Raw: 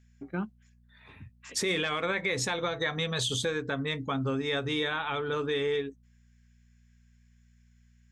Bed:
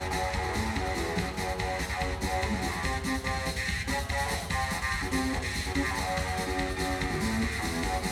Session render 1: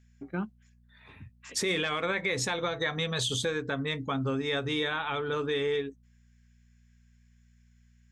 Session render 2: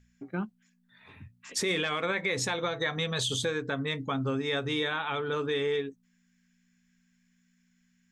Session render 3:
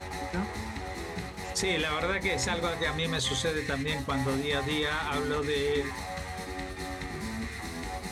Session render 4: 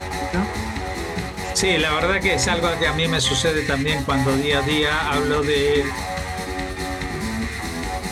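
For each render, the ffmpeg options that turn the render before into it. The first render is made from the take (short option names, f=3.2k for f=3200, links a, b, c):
-af anull
-af "bandreject=f=60:t=h:w=4,bandreject=f=120:t=h:w=4"
-filter_complex "[1:a]volume=-6.5dB[a];[0:a][a]amix=inputs=2:normalize=0"
-af "volume=10dB"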